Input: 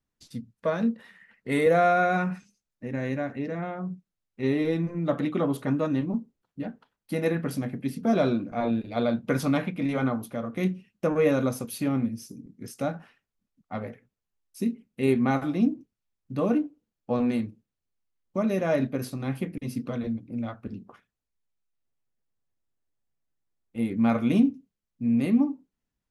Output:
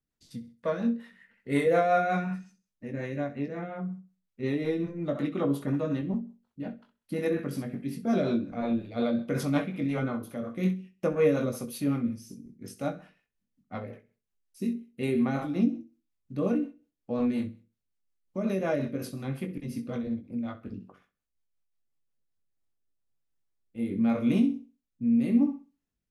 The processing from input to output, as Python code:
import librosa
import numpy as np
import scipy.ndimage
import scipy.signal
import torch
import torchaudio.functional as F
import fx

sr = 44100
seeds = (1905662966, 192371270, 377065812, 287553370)

y = fx.doubler(x, sr, ms=21.0, db=-6.5)
y = fx.room_flutter(y, sr, wall_m=11.0, rt60_s=0.34)
y = fx.rotary_switch(y, sr, hz=5.5, then_hz=0.85, switch_at_s=22.06)
y = y * librosa.db_to_amplitude(-2.5)